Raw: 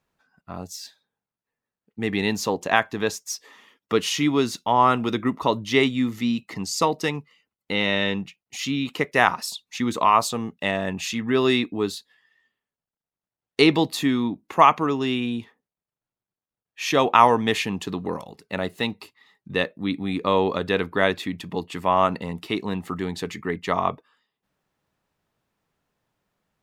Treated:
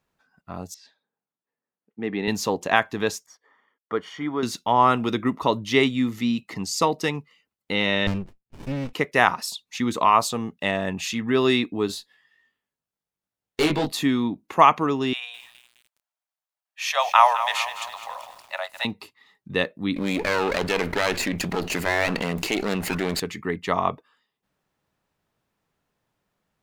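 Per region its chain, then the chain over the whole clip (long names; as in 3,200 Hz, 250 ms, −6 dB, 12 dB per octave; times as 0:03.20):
0:00.74–0:02.28: high-pass filter 200 Hz + head-to-tape spacing loss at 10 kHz 27 dB
0:03.26–0:04.43: mu-law and A-law mismatch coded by A + Savitzky-Golay smoothing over 41 samples + low-shelf EQ 390 Hz −10.5 dB
0:08.07–0:08.93: low-pass filter 3,000 Hz 24 dB per octave + windowed peak hold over 65 samples
0:11.87–0:13.92: tube saturation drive 18 dB, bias 0.35 + double-tracking delay 20 ms −2.5 dB
0:15.13–0:18.85: Butterworth high-pass 590 Hz 72 dB per octave + feedback echo at a low word length 208 ms, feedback 55%, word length 7 bits, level −11 dB
0:19.96–0:23.20: lower of the sound and its delayed copy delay 0.42 ms + low-shelf EQ 260 Hz −9.5 dB + envelope flattener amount 70%
whole clip: no processing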